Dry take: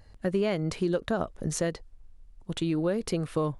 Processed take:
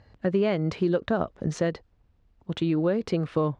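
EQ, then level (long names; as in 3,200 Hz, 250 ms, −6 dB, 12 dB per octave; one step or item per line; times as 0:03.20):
high-pass filter 75 Hz 12 dB per octave
high-frequency loss of the air 160 metres
+3.5 dB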